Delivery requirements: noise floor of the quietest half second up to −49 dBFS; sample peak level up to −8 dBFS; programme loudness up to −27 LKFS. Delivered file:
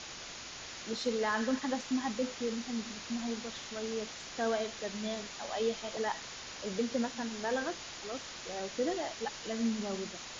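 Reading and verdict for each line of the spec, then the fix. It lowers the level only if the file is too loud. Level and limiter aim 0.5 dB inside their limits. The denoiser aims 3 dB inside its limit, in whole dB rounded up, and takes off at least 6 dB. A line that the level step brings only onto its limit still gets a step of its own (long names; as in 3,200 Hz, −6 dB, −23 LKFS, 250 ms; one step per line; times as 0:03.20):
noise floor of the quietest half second −46 dBFS: out of spec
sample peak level −20.0 dBFS: in spec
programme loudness −36.0 LKFS: in spec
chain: broadband denoise 6 dB, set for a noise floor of −46 dBFS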